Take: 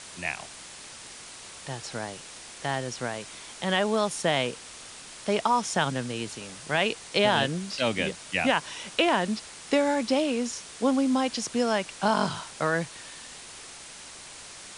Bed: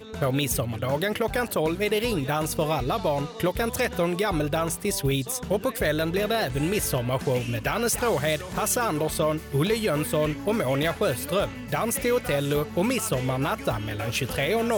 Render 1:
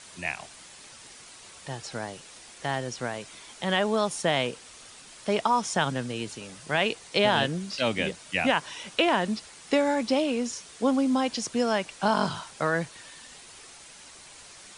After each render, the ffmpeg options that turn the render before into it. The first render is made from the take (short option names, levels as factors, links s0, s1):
-af "afftdn=nr=6:nf=-45"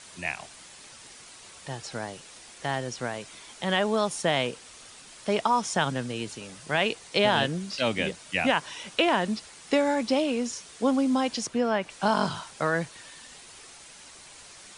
-filter_complex "[0:a]asettb=1/sr,asplit=3[s0][s1][s2];[s0]atrim=end=11.474[s3];[s1]atrim=start=11.47:end=11.9,asetpts=PTS-STARTPTS,afade=t=in:d=0.004:c=qsin,afade=t=out:st=0.426:d=0.004:c=qsin,acrossover=split=3200[s4][s5];[s5]acompressor=threshold=0.00224:ratio=4:attack=1:release=60[s6];[s4][s6]amix=inputs=2:normalize=0[s7];[s2]atrim=start=11.896[s8];[s3][s7]acrossfade=d=0.004:c1=hsin:c2=qsin[s9];[s9][s8]acrossfade=d=0.004:c1=qsin:c2=hsin"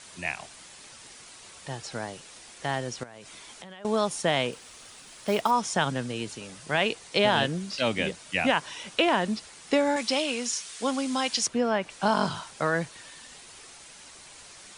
-filter_complex "[0:a]asettb=1/sr,asplit=3[s0][s1][s2];[s0]atrim=end=3.034[s3];[s1]atrim=start=3.03:end=3.85,asetpts=PTS-STARTPTS,afade=t=in:d=0.004:c=qsin,afade=t=out:st=0.816:d=0.004:c=qsin,acompressor=threshold=0.01:ratio=12:attack=3.2:release=140:knee=1:detection=peak[s4];[s2]atrim=start=3.846[s5];[s3][s4]acrossfade=d=0.004:c1=hsin:c2=qsin[s6];[s6][s5]acrossfade=d=0.004:c1=qsin:c2=hsin,asettb=1/sr,asplit=3[s7][s8][s9];[s7]atrim=end=4.524[s10];[s8]atrim=start=4.52:end=5.51,asetpts=PTS-STARTPTS,afade=t=in:d=0.004:c=qsin,afade=t=out:st=0.986:d=0.004:c=qsin,acrusher=bits=5:mode=log:mix=0:aa=0.000001[s11];[s9]atrim=start=5.506[s12];[s10][s11]acrossfade=d=0.004:c1=hsin:c2=qsin[s13];[s13][s12]acrossfade=d=0.004:c1=qsin:c2=hsin,asettb=1/sr,asplit=3[s14][s15][s16];[s14]atrim=end=9.964[s17];[s15]atrim=start=9.96:end=11.48,asetpts=PTS-STARTPTS,afade=t=in:d=0.004:c=qsin,afade=t=out:st=1.516:d=0.004:c=qsin,tiltshelf=f=970:g=-7[s18];[s16]atrim=start=11.476[s19];[s17][s18]acrossfade=d=0.004:c1=hsin:c2=qsin[s20];[s20][s19]acrossfade=d=0.004:c1=qsin:c2=hsin"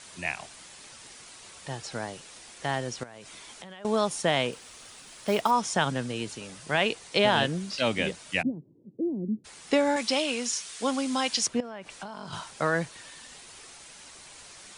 -filter_complex "[0:a]asplit=3[s0][s1][s2];[s0]afade=t=out:st=8.41:d=0.02[s3];[s1]asuperpass=centerf=200:order=8:qfactor=0.74,afade=t=in:st=8.41:d=0.02,afade=t=out:st=9.44:d=0.02[s4];[s2]afade=t=in:st=9.44:d=0.02[s5];[s3][s4][s5]amix=inputs=3:normalize=0,asettb=1/sr,asplit=3[s6][s7][s8];[s6]atrim=end=11.604[s9];[s7]atrim=start=11.6:end=12.33,asetpts=PTS-STARTPTS,afade=t=in:d=0.004:c=qsin,afade=t=out:st=0.726:d=0.004:c=qsin,acompressor=threshold=0.0178:ratio=10:attack=3.2:release=140:knee=1:detection=peak[s10];[s8]atrim=start=12.326[s11];[s9][s10]acrossfade=d=0.004:c1=hsin:c2=qsin[s12];[s12][s11]acrossfade=d=0.004:c1=qsin:c2=hsin"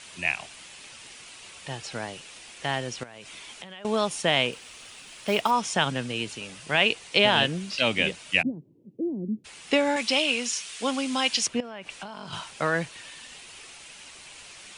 -af "equalizer=f=2700:w=1.9:g=8"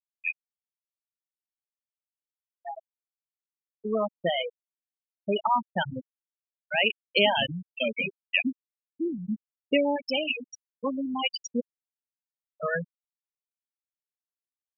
-af "afftfilt=real='re*gte(hypot(re,im),0.251)':imag='im*gte(hypot(re,im),0.251)':win_size=1024:overlap=0.75"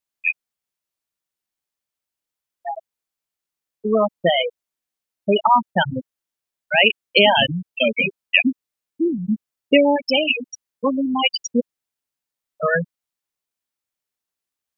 -af "volume=2.99,alimiter=limit=0.891:level=0:latency=1"